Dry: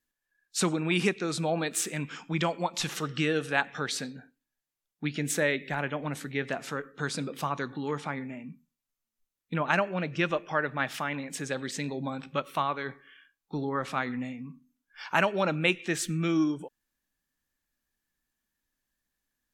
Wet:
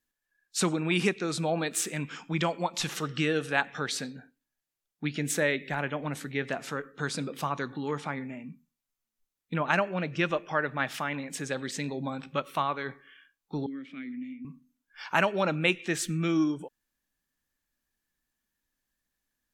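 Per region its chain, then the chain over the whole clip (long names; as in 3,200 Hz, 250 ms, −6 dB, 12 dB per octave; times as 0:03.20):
0:13.66–0:14.45: formant filter i + multiband upward and downward compressor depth 70%
whole clip: no processing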